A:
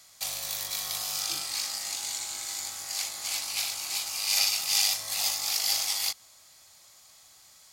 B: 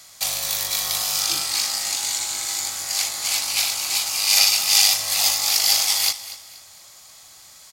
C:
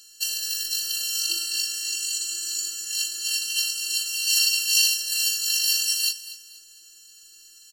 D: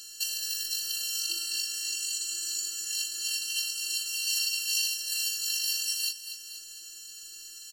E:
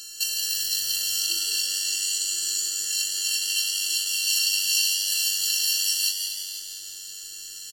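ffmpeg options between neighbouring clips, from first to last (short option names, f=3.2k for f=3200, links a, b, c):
-af "aecho=1:1:238|476|714:0.168|0.0554|0.0183,volume=9dB"
-af "highshelf=f=1.8k:t=q:w=3:g=8,afftfilt=real='hypot(re,im)*cos(PI*b)':imag='0':win_size=512:overlap=0.75,afftfilt=real='re*eq(mod(floor(b*sr/1024/660),2),0)':imag='im*eq(mod(floor(b*sr/1024/660),2),0)':win_size=1024:overlap=0.75,volume=-6dB"
-af "acompressor=threshold=-41dB:ratio=2,volume=5dB"
-filter_complex "[0:a]asplit=8[a][b][c][d][e][f][g][h];[b]adelay=169,afreqshift=96,volume=-6dB[i];[c]adelay=338,afreqshift=192,volume=-11.2dB[j];[d]adelay=507,afreqshift=288,volume=-16.4dB[k];[e]adelay=676,afreqshift=384,volume=-21.6dB[l];[f]adelay=845,afreqshift=480,volume=-26.8dB[m];[g]adelay=1014,afreqshift=576,volume=-32dB[n];[h]adelay=1183,afreqshift=672,volume=-37.2dB[o];[a][i][j][k][l][m][n][o]amix=inputs=8:normalize=0,volume=5dB"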